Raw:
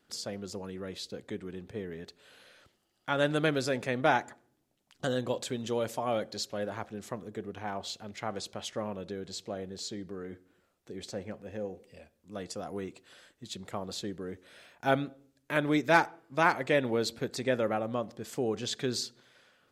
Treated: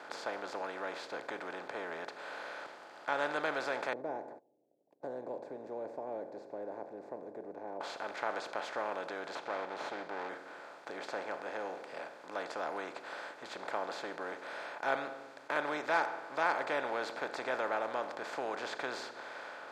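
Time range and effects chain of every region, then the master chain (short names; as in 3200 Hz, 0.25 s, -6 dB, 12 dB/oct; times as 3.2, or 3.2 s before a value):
3.93–7.81 gate -60 dBFS, range -40 dB + inverse Chebyshev low-pass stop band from 1200 Hz, stop band 50 dB
9.35–10.29 minimum comb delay 0.31 ms + LPF 4200 Hz
whole clip: per-bin compression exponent 0.4; HPF 900 Hz 12 dB/oct; tilt -4.5 dB/oct; gain -6.5 dB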